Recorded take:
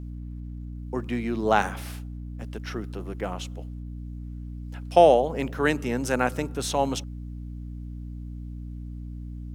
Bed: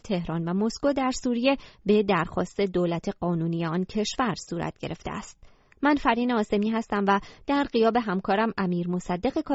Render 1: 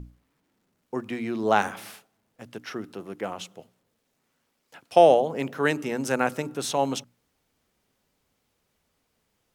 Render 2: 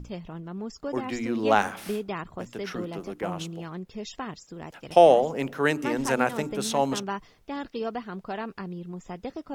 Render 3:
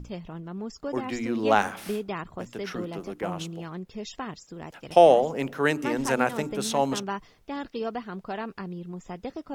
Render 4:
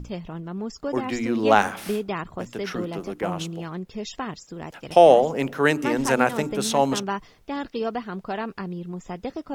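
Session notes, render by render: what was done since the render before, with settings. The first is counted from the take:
notches 60/120/180/240/300 Hz
add bed -10 dB
nothing audible
gain +4 dB; limiter -3 dBFS, peak gain reduction 2.5 dB

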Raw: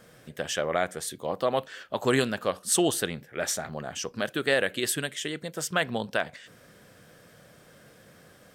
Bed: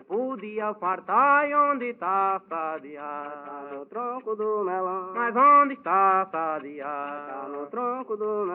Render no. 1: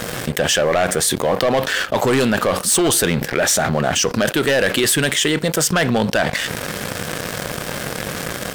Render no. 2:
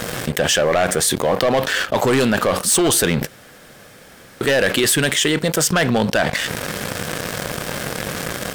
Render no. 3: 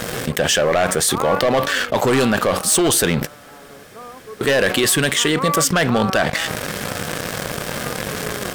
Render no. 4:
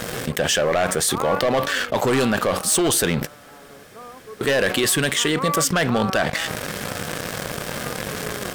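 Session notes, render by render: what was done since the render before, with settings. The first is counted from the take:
sample leveller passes 3; fast leveller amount 70%
3.27–4.41 room tone
add bed -6.5 dB
gain -3 dB

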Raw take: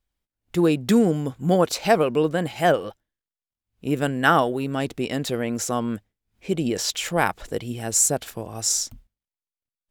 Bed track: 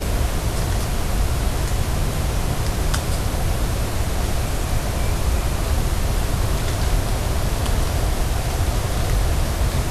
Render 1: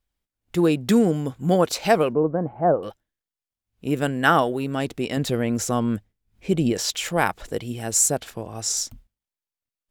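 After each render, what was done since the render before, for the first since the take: 2.13–2.83 LPF 1100 Hz 24 dB/oct; 5.17–6.73 low shelf 200 Hz +8 dB; 8.2–8.77 high shelf 9000 Hz -9 dB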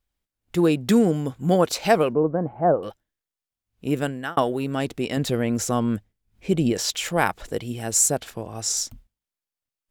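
3.96–4.37 fade out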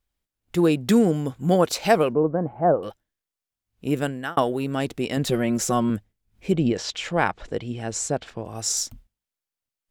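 5.26–5.9 comb 5.4 ms, depth 60%; 6.52–8.45 air absorption 110 m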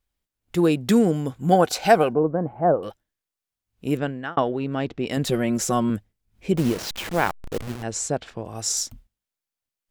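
1.52–2.19 small resonant body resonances 760/1500 Hz, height 11 dB; 3.97–5.07 air absorption 180 m; 6.57–7.83 level-crossing sampler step -28 dBFS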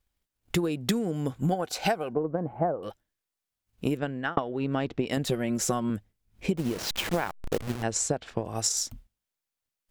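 transient shaper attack +7 dB, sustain 0 dB; compressor 20:1, threshold -23 dBFS, peak gain reduction 19.5 dB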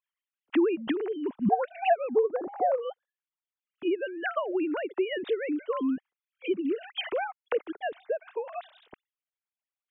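sine-wave speech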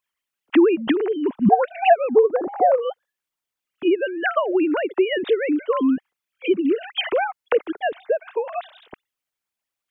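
gain +9 dB

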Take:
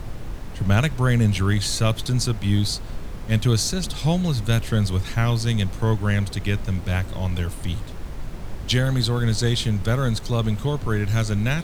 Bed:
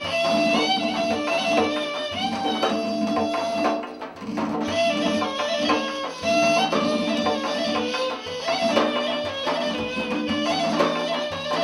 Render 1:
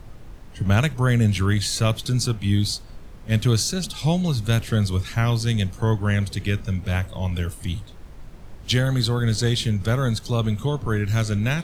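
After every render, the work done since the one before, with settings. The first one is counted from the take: noise print and reduce 9 dB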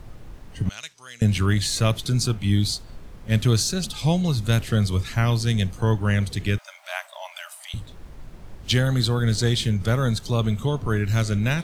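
0.69–1.22 band-pass 5400 Hz, Q 1.7; 6.58–7.74 brick-wall FIR high-pass 570 Hz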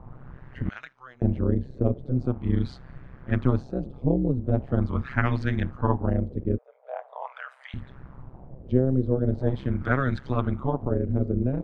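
AM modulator 130 Hz, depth 95%; LFO low-pass sine 0.42 Hz 440–1800 Hz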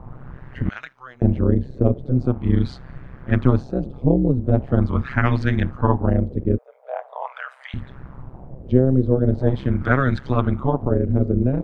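gain +6 dB; limiter -2 dBFS, peak gain reduction 3 dB

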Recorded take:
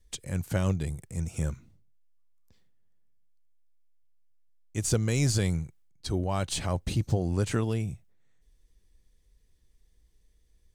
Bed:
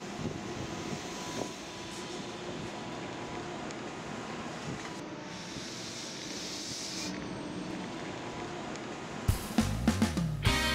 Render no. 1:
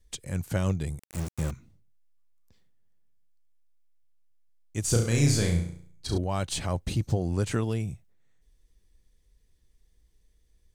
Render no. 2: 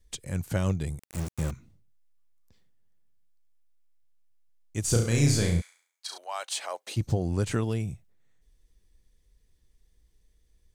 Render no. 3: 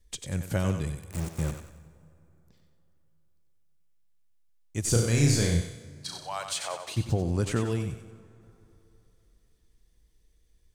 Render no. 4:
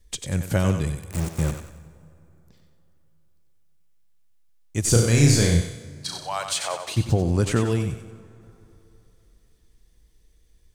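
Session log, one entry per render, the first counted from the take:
0.99–1.51 sample gate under -33 dBFS; 4.85–6.18 flutter echo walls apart 5.9 m, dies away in 0.54 s
5.6–6.96 HPF 1200 Hz -> 450 Hz 24 dB/oct
thinning echo 93 ms, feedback 40%, high-pass 420 Hz, level -7 dB; plate-style reverb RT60 3.2 s, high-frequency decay 0.6×, DRR 17 dB
gain +6 dB

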